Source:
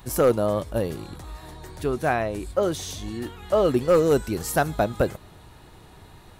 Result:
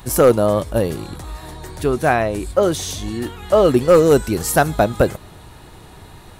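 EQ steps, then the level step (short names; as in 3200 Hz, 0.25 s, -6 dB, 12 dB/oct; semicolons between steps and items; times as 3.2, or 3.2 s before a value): bell 9300 Hz +2.5 dB 0.77 oct; +7.0 dB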